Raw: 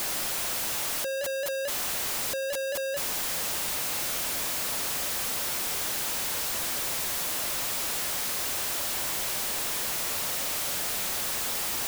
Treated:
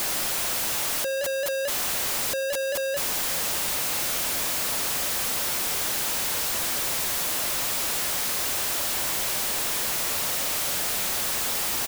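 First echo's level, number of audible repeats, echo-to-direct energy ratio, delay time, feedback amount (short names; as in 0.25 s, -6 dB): -24.0 dB, 2, -23.5 dB, 0.938 s, 29%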